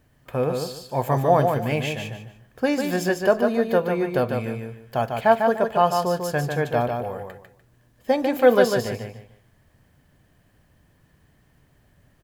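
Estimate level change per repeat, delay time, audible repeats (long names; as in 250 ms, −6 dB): −11.5 dB, 148 ms, 3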